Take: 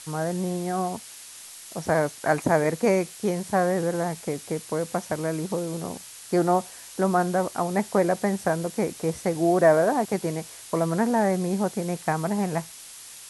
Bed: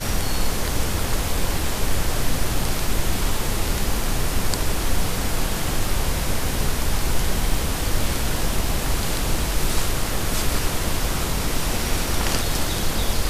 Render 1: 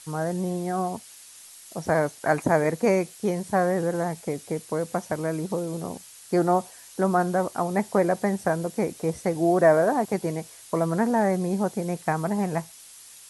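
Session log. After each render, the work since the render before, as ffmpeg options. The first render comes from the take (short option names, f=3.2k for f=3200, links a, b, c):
-af "afftdn=nr=6:nf=-44"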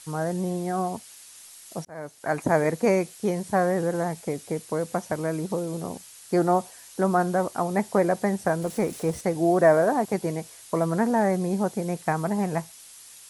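-filter_complex "[0:a]asettb=1/sr,asplit=3[a][b][c];[a]atrim=end=8.624[d];[b]atrim=start=8.62:end=9.21,asetpts=PTS-STARTPTS,afade=t=in:d=0.004:c=qsin,afade=t=out:st=0.586:d=0.004:c=qsin,aeval=exprs='val(0)+0.5*0.00944*sgn(val(0))':c=same[e];[c]atrim=start=9.206[f];[d][e]acrossfade=d=0.004:c1=hsin:c2=qsin[g];[g][f]acrossfade=d=0.004:c1=qsin:c2=hsin,asplit=2[h][i];[h]atrim=end=1.85,asetpts=PTS-STARTPTS,afade=t=out:st=1.846:d=0.004:c=hsin[j];[i]atrim=start=1.85,asetpts=PTS-STARTPTS,afade=t=in:d=0.72[k];[j][k]concat=n=2:v=0:a=1"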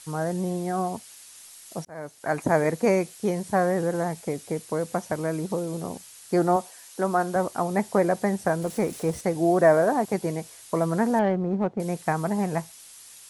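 -filter_complex "[0:a]asettb=1/sr,asplit=3[a][b][c];[a]atrim=end=6.564[d];[b]atrim=start=6.56:end=7.36,asetpts=PTS-STARTPTS,afade=t=in:d=0.004:c=qsin,afade=t=out:st=0.796:d=0.004:c=qsin,highpass=f=290:p=1[e];[c]atrim=start=7.356[f];[d][e]acrossfade=d=0.004:c1=hsin:c2=qsin[g];[g][f]acrossfade=d=0.004:c1=qsin:c2=hsin,asettb=1/sr,asplit=3[h][i][j];[h]atrim=end=11.194[k];[i]atrim=start=11.19:end=11.8,asetpts=PTS-STARTPTS,afade=t=in:d=0.004:c=qsin,afade=t=out:st=0.606:d=0.004:c=qsin,adynamicsmooth=sensitivity=1:basefreq=1.1k[l];[j]atrim=start=11.796[m];[k][l]acrossfade=d=0.004:c1=hsin:c2=qsin[n];[n][m]acrossfade=d=0.004:c1=qsin:c2=hsin"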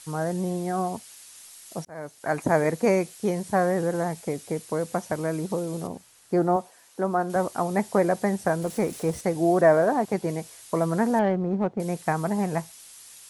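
-filter_complex "[0:a]asettb=1/sr,asplit=3[a][b][c];[a]atrim=end=5.874[d];[b]atrim=start=5.87:end=7.3,asetpts=PTS-STARTPTS,afade=t=in:d=0.004:c=qsin,afade=t=out:st=1.426:d=0.004:c=qsin,highshelf=f=2k:g=-10[e];[c]atrim=start=7.296[f];[d][e]acrossfade=d=0.004:c1=hsin:c2=qsin[g];[g][f]acrossfade=d=0.004:c1=qsin:c2=hsin,asettb=1/sr,asplit=3[h][i][j];[h]atrim=end=9.614[k];[i]atrim=start=9.61:end=10.29,asetpts=PTS-STARTPTS,afade=t=in:d=0.004:c=qsin,afade=t=out:st=0.676:d=0.004:c=qsin,highshelf=f=6.4k:g=-6[l];[j]atrim=start=10.286[m];[k][l]acrossfade=d=0.004:c1=hsin:c2=qsin[n];[n][m]acrossfade=d=0.004:c1=qsin:c2=hsin"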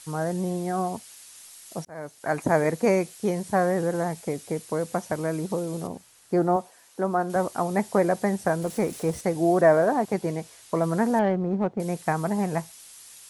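-filter_complex "[0:a]asettb=1/sr,asplit=3[a][b][c];[a]atrim=end=10.294[d];[b]atrim=start=10.29:end=10.84,asetpts=PTS-STARTPTS,afade=t=in:d=0.004:c=qsin,afade=t=out:st=0.546:d=0.004:c=qsin,highshelf=f=9.2k:g=-8.5[e];[c]atrim=start=10.836[f];[d][e]acrossfade=d=0.004:c1=hsin:c2=qsin[g];[g][f]acrossfade=d=0.004:c1=qsin:c2=hsin"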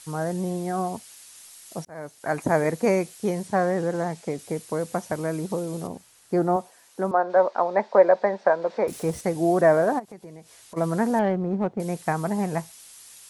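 -filter_complex "[0:a]asettb=1/sr,asplit=3[a][b][c];[a]atrim=end=3.474[d];[b]atrim=start=3.47:end=4.39,asetpts=PTS-STARTPTS,afade=t=in:d=0.004:c=qsin,afade=t=out:st=0.916:d=0.004:c=qsin,highpass=100,lowpass=7.8k[e];[c]atrim=start=4.386[f];[d][e]acrossfade=d=0.004:c1=hsin:c2=qsin[g];[g][f]acrossfade=d=0.004:c1=qsin:c2=hsin,asettb=1/sr,asplit=3[h][i][j];[h]atrim=end=7.114[k];[i]atrim=start=7.11:end=8.88,asetpts=PTS-STARTPTS,afade=t=in:d=0.004:c=qsin,afade=t=out:st=1.766:d=0.004:c=qsin,highpass=f=260:w=0.5412,highpass=f=260:w=1.3066,equalizer=f=300:t=q:w=4:g=-9,equalizer=f=570:t=q:w=4:g=9,equalizer=f=950:t=q:w=4:g=7,equalizer=f=1.6k:t=q:w=4:g=3,equalizer=f=3k:t=q:w=4:g=-7,lowpass=f=4.2k:w=0.5412,lowpass=f=4.2k:w=1.3066[l];[j]atrim=start=8.876[m];[k][l]acrossfade=d=0.004:c1=hsin:c2=qsin[n];[n][m]acrossfade=d=0.004:c1=qsin:c2=hsin,asplit=3[o][p][q];[o]afade=t=out:st=9.98:d=0.02[r];[p]acompressor=threshold=-46dB:ratio=2.5:attack=3.2:release=140:knee=1:detection=peak,afade=t=in:st=9.98:d=0.02,afade=t=out:st=10.76:d=0.02[s];[q]afade=t=in:st=10.76:d=0.02[t];[r][s][t]amix=inputs=3:normalize=0"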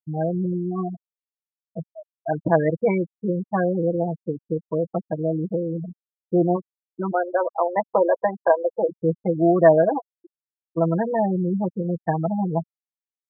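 -af "aecho=1:1:6.1:0.75,afftfilt=real='re*gte(hypot(re,im),0.178)':imag='im*gte(hypot(re,im),0.178)':win_size=1024:overlap=0.75"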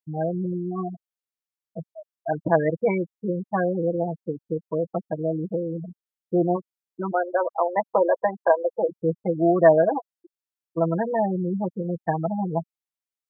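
-af "lowshelf=f=370:g=-4"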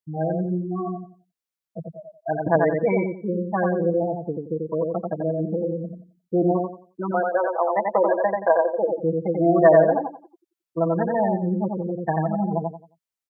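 -af "aecho=1:1:89|178|267|356:0.708|0.184|0.0479|0.0124"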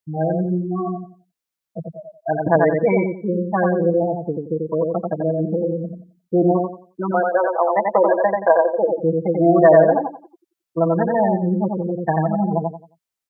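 -af "volume=4dB,alimiter=limit=-2dB:level=0:latency=1"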